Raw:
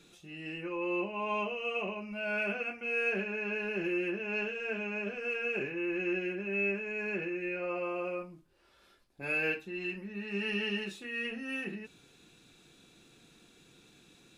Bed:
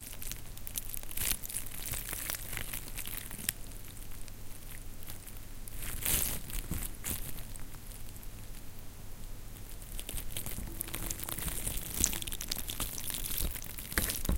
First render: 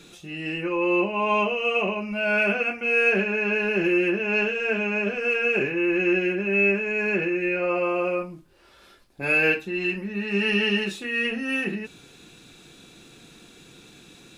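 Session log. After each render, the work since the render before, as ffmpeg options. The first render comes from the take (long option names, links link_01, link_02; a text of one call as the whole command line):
ffmpeg -i in.wav -af "volume=11dB" out.wav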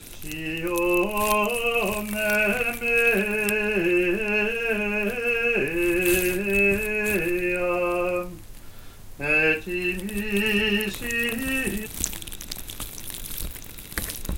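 ffmpeg -i in.wav -i bed.wav -filter_complex "[1:a]volume=2dB[link_01];[0:a][link_01]amix=inputs=2:normalize=0" out.wav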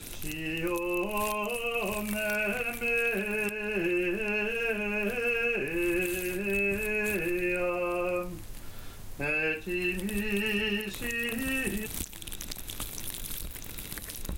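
ffmpeg -i in.wav -af "acompressor=threshold=-29dB:ratio=2,alimiter=limit=-19dB:level=0:latency=1:release=375" out.wav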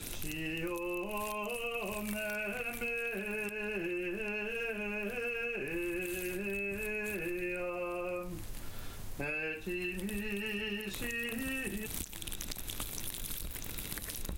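ffmpeg -i in.wav -af "acompressor=threshold=-34dB:ratio=6" out.wav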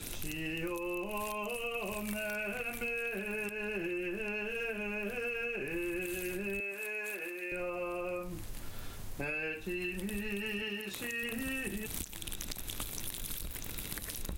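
ffmpeg -i in.wav -filter_complex "[0:a]asettb=1/sr,asplit=3[link_01][link_02][link_03];[link_01]atrim=end=6.604[link_04];[link_02]atrim=start=6.6:end=7.52,asetpts=PTS-STARTPTS,afade=type=in:duration=0.004:curve=qsin,afade=type=out:start_time=0.916:duration=0.004:curve=qsin,highpass=480[link_05];[link_03]atrim=start=7.516[link_06];[link_04][link_05]acrossfade=duration=0.004:curve1=hsin:curve2=qsin[link_07];[link_07][link_06]acrossfade=duration=0.004:curve1=qsin:curve2=hsin,asettb=1/sr,asplit=3[link_08][link_09][link_10];[link_08]atrim=end=10.624[link_11];[link_09]atrim=start=10.62:end=11.23,asetpts=PTS-STARTPTS,afade=type=in:duration=0.004:curve=qsin,afade=type=out:start_time=0.606:duration=0.004:curve=qsin,highpass=frequency=190:poles=1[link_12];[link_10]atrim=start=11.226[link_13];[link_11][link_12]acrossfade=duration=0.004:curve1=hsin:curve2=qsin[link_14];[link_14][link_13]acrossfade=duration=0.004:curve1=qsin:curve2=hsin" out.wav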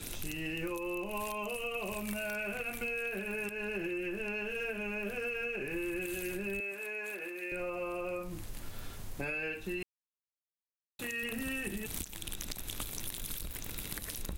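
ffmpeg -i in.wav -filter_complex "[0:a]asettb=1/sr,asplit=3[link_01][link_02][link_03];[link_01]atrim=end=6.754[link_04];[link_02]atrim=start=6.75:end=7.36,asetpts=PTS-STARTPTS,afade=type=in:duration=0.004:curve=qsin,afade=type=out:start_time=0.606:duration=0.004:curve=qsin,highshelf=frequency=4300:gain=-5.5[link_05];[link_03]atrim=start=7.356[link_06];[link_04][link_05]acrossfade=duration=0.004:curve1=hsin:curve2=qsin[link_07];[link_07][link_06]acrossfade=duration=0.004:curve1=qsin:curve2=hsin,asplit=3[link_08][link_09][link_10];[link_08]atrim=end=9.83,asetpts=PTS-STARTPTS,afade=type=out:start_time=9.826:duration=0.004:curve=hsin[link_11];[link_09]atrim=start=9.83:end=10.99,asetpts=PTS-STARTPTS,volume=0[link_12];[link_10]atrim=start=10.99,asetpts=PTS-STARTPTS,afade=type=in:duration=0.004:curve=hsin[link_13];[link_11][link_12][link_13]concat=n=3:v=0:a=1" out.wav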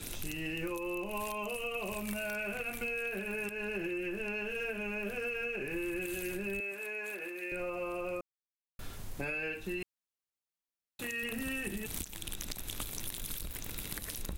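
ffmpeg -i in.wav -filter_complex "[0:a]asplit=3[link_01][link_02][link_03];[link_01]atrim=end=8.21,asetpts=PTS-STARTPTS,afade=type=out:start_time=8.206:duration=0.004:curve=hsin[link_04];[link_02]atrim=start=8.21:end=8.79,asetpts=PTS-STARTPTS,volume=0[link_05];[link_03]atrim=start=8.79,asetpts=PTS-STARTPTS,afade=type=in:duration=0.004:curve=hsin[link_06];[link_04][link_05][link_06]concat=n=3:v=0:a=1" out.wav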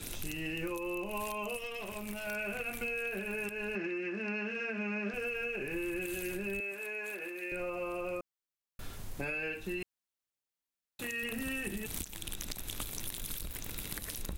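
ffmpeg -i in.wav -filter_complex "[0:a]asettb=1/sr,asplit=3[link_01][link_02][link_03];[link_01]atrim=end=1.584[link_04];[link_02]atrim=start=1.58:end=2.27,asetpts=PTS-STARTPTS,afade=type=in:duration=0.004:curve=qsin,afade=type=out:start_time=0.686:duration=0.004:curve=qsin,aeval=exprs='(tanh(44.7*val(0)+0.65)-tanh(0.65))/44.7':channel_layout=same[link_05];[link_03]atrim=start=2.266[link_06];[link_04][link_05]acrossfade=duration=0.004:curve1=hsin:curve2=qsin[link_07];[link_07][link_06]acrossfade=duration=0.004:curve1=qsin:curve2=hsin,asettb=1/sr,asplit=3[link_08][link_09][link_10];[link_08]atrim=end=3.754[link_11];[link_09]atrim=start=3.75:end=5.14,asetpts=PTS-STARTPTS,afade=type=in:duration=0.004:curve=qsin,afade=type=out:start_time=1.386:duration=0.004:curve=qsin,highpass=210,equalizer=frequency=220:width_type=q:width=4:gain=10,equalizer=frequency=500:width_type=q:width=4:gain=-4,equalizer=frequency=1200:width_type=q:width=4:gain=5,equalizer=frequency=2000:width_type=q:width=4:gain=5,equalizer=frequency=3100:width_type=q:width=4:gain=-5,equalizer=frequency=5300:width_type=q:width=4:gain=4,lowpass=frequency=6000:width=0.5412,lowpass=frequency=6000:width=1.3066[link_12];[link_10]atrim=start=5.136[link_13];[link_11][link_12]acrossfade=duration=0.004:curve1=hsin:curve2=qsin[link_14];[link_14][link_13]acrossfade=duration=0.004:curve1=qsin:curve2=hsin" out.wav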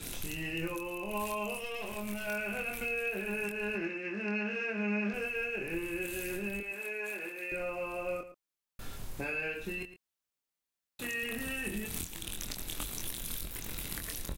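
ffmpeg -i in.wav -filter_complex "[0:a]asplit=2[link_01][link_02];[link_02]adelay=24,volume=-5dB[link_03];[link_01][link_03]amix=inputs=2:normalize=0,asplit=2[link_04][link_05];[link_05]adelay=110.8,volume=-13dB,highshelf=frequency=4000:gain=-2.49[link_06];[link_04][link_06]amix=inputs=2:normalize=0" out.wav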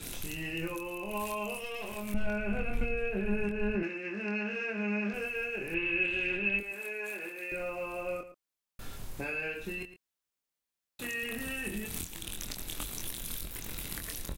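ffmpeg -i in.wav -filter_complex "[0:a]asettb=1/sr,asplit=3[link_01][link_02][link_03];[link_01]atrim=end=2.144[link_04];[link_02]atrim=start=2.14:end=3.83,asetpts=PTS-STARTPTS,afade=type=in:duration=0.004:curve=qsin,afade=type=out:start_time=1.686:duration=0.004:curve=qsin,aemphasis=mode=reproduction:type=riaa[link_05];[link_03]atrim=start=3.826[link_06];[link_04][link_05]acrossfade=duration=0.004:curve1=hsin:curve2=qsin[link_07];[link_07][link_06]acrossfade=duration=0.004:curve1=qsin:curve2=hsin,asettb=1/sr,asplit=3[link_08][link_09][link_10];[link_08]atrim=end=5.744[link_11];[link_09]atrim=start=5.74:end=6.59,asetpts=PTS-STARTPTS,afade=type=in:duration=0.004:curve=qsin,afade=type=out:start_time=0.846:duration=0.004:curve=qsin,lowpass=frequency=2700:width_type=q:width=3.6[link_12];[link_10]atrim=start=6.586[link_13];[link_11][link_12]acrossfade=duration=0.004:curve1=hsin:curve2=qsin[link_14];[link_14][link_13]acrossfade=duration=0.004:curve1=qsin:curve2=hsin,asettb=1/sr,asplit=3[link_15][link_16][link_17];[link_15]atrim=end=7.114[link_18];[link_16]atrim=start=7.11:end=8.04,asetpts=PTS-STARTPTS,afade=type=in:duration=0.004:curve=qsin,afade=type=out:start_time=0.926:duration=0.004:curve=qsin,acrusher=bits=8:mode=log:mix=0:aa=0.000001[link_19];[link_17]atrim=start=8.036[link_20];[link_18][link_19]acrossfade=duration=0.004:curve1=hsin:curve2=qsin[link_21];[link_21][link_20]acrossfade=duration=0.004:curve1=qsin:curve2=hsin" out.wav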